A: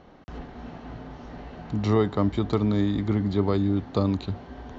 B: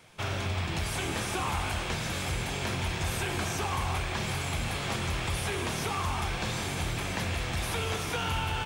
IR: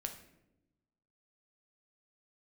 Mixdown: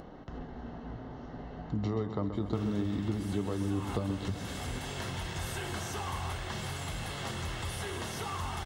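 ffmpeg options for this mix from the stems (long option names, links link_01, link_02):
-filter_complex "[0:a]tiltshelf=frequency=1400:gain=3,acompressor=threshold=-23dB:ratio=6,volume=-1.5dB,asplit=3[link_01][link_02][link_03];[link_02]volume=-9.5dB[link_04];[1:a]adelay=2350,volume=-1dB[link_05];[link_03]apad=whole_len=485236[link_06];[link_05][link_06]sidechaincompress=threshold=-34dB:ratio=5:attack=8.2:release=278[link_07];[link_04]aecho=0:1:130|260|390|520|650|780|910|1040|1170:1|0.57|0.325|0.185|0.106|0.0602|0.0343|0.0195|0.0111[link_08];[link_01][link_07][link_08]amix=inputs=3:normalize=0,acompressor=mode=upward:threshold=-36dB:ratio=2.5,flanger=delay=6.1:depth=4.6:regen=-74:speed=0.57:shape=triangular,asuperstop=centerf=2400:order=4:qfactor=7.3"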